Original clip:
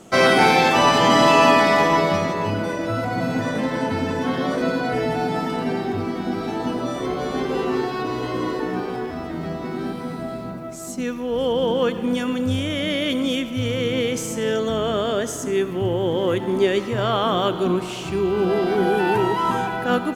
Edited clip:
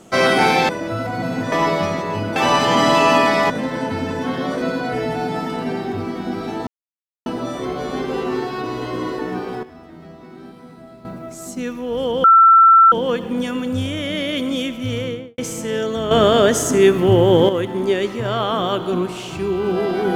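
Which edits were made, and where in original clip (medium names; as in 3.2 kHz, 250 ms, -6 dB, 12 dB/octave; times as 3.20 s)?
0.69–1.83 s: swap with 2.67–3.50 s
6.67 s: insert silence 0.59 s
9.04–10.46 s: gain -11.5 dB
11.65 s: add tone 1.34 kHz -6 dBFS 0.68 s
13.70–14.11 s: studio fade out
14.84–16.22 s: gain +9 dB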